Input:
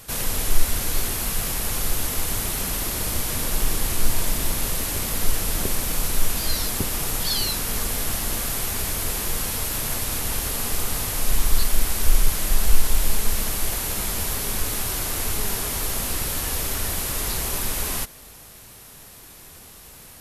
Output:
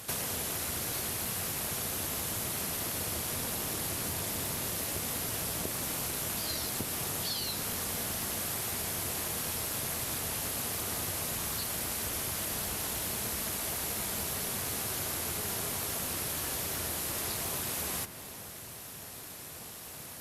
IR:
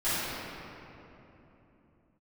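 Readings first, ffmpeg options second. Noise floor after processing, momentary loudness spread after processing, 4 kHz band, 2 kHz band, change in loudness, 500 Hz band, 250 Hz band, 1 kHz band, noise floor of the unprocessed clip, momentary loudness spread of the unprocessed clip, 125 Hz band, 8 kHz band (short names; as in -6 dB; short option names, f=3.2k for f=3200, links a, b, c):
-45 dBFS, 2 LU, -7.5 dB, -7.5 dB, -8.0 dB, -6.5 dB, -7.5 dB, -7.0 dB, -45 dBFS, 4 LU, -10.5 dB, -7.5 dB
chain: -filter_complex "[0:a]highpass=f=80:w=0.5412,highpass=f=80:w=1.3066,tremolo=f=260:d=0.621,acompressor=threshold=-34dB:ratio=6,equalizer=f=650:w=4.4:g=2.5,asplit=2[a][b];[1:a]atrim=start_sample=2205,adelay=34[c];[b][c]afir=irnorm=-1:irlink=0,volume=-24dB[d];[a][d]amix=inputs=2:normalize=0,volume=2.5dB" -ar 48000 -c:a libopus -b:a 64k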